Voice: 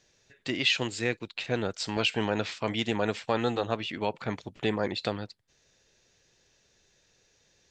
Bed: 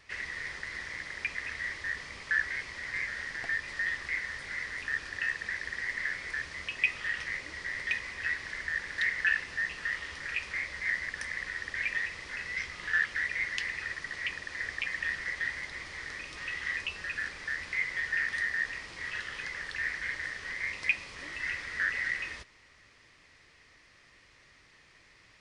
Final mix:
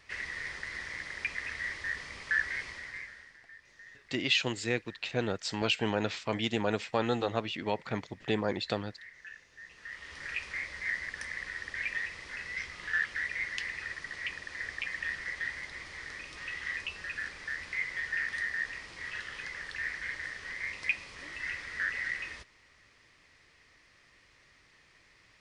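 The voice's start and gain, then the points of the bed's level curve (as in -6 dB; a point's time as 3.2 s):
3.65 s, -2.0 dB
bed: 2.69 s -0.5 dB
3.46 s -21 dB
9.5 s -21 dB
10.22 s -2.5 dB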